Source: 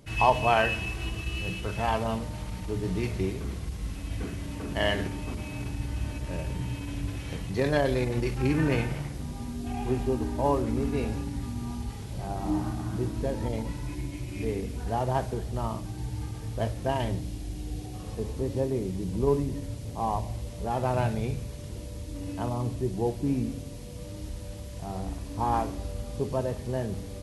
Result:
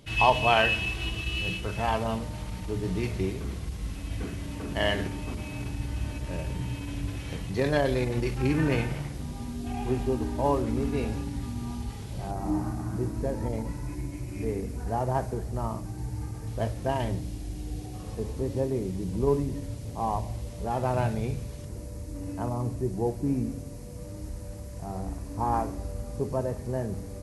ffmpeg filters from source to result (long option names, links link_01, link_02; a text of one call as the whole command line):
ffmpeg -i in.wav -af "asetnsamples=nb_out_samples=441:pad=0,asendcmd='1.57 equalizer g 0.5;12.31 equalizer g -10;16.47 equalizer g -3;21.65 equalizer g -11.5',equalizer=frequency=3300:width_type=o:width=0.84:gain=7.5" out.wav